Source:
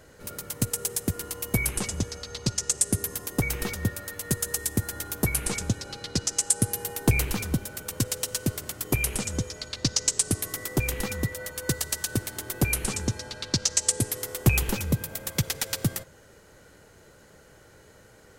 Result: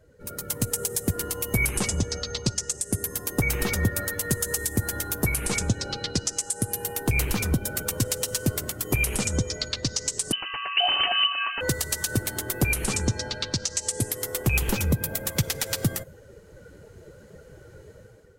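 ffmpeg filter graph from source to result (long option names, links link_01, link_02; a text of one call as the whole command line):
ffmpeg -i in.wav -filter_complex "[0:a]asettb=1/sr,asplit=3[link_01][link_02][link_03];[link_01]atrim=end=10.324[link_04];[link_02]atrim=start=10.32:end=11.61,asetpts=PTS-STARTPTS,afade=type=in:duration=0.004:curve=qsin,afade=type=out:start_time=1.286:duration=0.004:curve=qsin,aemphasis=mode=production:type=75kf,bandreject=frequency=121.7:width_type=h:width=4,bandreject=frequency=243.4:width_type=h:width=4,bandreject=frequency=365.1:width_type=h:width=4,bandreject=frequency=486.8:width_type=h:width=4,bandreject=frequency=608.5:width_type=h:width=4,bandreject=frequency=730.2:width_type=h:width=4,bandreject=frequency=851.9:width_type=h:width=4,bandreject=frequency=973.6:width_type=h:width=4,bandreject=frequency=1095.3:width_type=h:width=4,bandreject=frequency=1217:width_type=h:width=4,bandreject=frequency=1338.7:width_type=h:width=4,bandreject=frequency=1460.4:width_type=h:width=4,bandreject=frequency=1582.1:width_type=h:width=4,bandreject=frequency=1703.8:width_type=h:width=4,bandreject=frequency=1825.5:width_type=h:width=4,bandreject=frequency=1947.2:width_type=h:width=4,bandreject=frequency=2068.9:width_type=h:width=4,lowpass=frequency=2600:width_type=q:width=0.5098,lowpass=frequency=2600:width_type=q:width=0.6013,lowpass=frequency=2600:width_type=q:width=0.9,lowpass=frequency=2600:width_type=q:width=2.563,afreqshift=-3100[link_05];[link_03]atrim=start=11.606[link_06];[link_04][link_05]acrossfade=duration=0.004:curve1=hsin:curve2=qsin[link_07];[link_07][link_06]acrossfade=duration=0.004:curve1=qsin:curve2=hsin,afftdn=noise_reduction=15:noise_floor=-46,dynaudnorm=framelen=210:gausssize=5:maxgain=12dB,alimiter=limit=-12.5dB:level=0:latency=1:release=135" out.wav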